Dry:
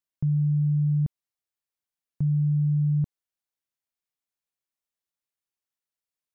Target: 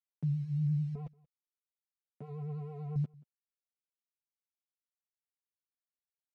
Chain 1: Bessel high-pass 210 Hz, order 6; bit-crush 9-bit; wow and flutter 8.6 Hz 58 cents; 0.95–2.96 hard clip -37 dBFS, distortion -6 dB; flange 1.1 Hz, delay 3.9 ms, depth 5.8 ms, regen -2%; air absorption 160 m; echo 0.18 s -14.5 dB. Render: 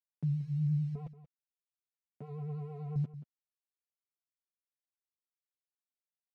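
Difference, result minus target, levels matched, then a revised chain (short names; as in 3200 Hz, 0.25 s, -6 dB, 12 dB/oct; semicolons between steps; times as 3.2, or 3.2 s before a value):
echo-to-direct +10.5 dB
Bessel high-pass 210 Hz, order 6; bit-crush 9-bit; wow and flutter 8.6 Hz 58 cents; 0.95–2.96 hard clip -37 dBFS, distortion -6 dB; flange 1.1 Hz, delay 3.9 ms, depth 5.8 ms, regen -2%; air absorption 160 m; echo 0.18 s -25 dB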